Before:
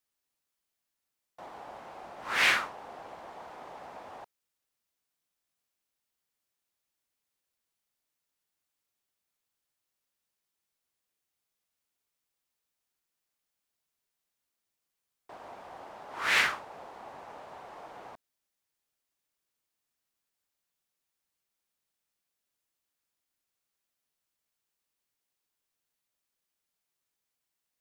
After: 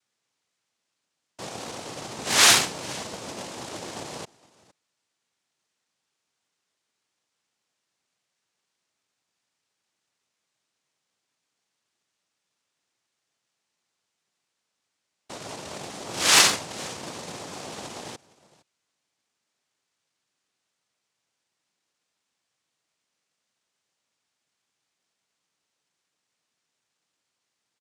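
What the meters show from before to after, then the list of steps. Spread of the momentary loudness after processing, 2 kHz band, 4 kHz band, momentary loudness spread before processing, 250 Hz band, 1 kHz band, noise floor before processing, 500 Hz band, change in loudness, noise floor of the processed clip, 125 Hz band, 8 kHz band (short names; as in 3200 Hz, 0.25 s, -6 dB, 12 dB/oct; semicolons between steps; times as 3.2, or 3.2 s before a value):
21 LU, +3.0 dB, +13.0 dB, 22 LU, +14.5 dB, +6.5 dB, under -85 dBFS, +9.5 dB, +7.5 dB, -81 dBFS, +16.0 dB, +22.0 dB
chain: echo 0.462 s -22.5 dB; noise vocoder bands 2; Doppler distortion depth 0.57 ms; gain +9 dB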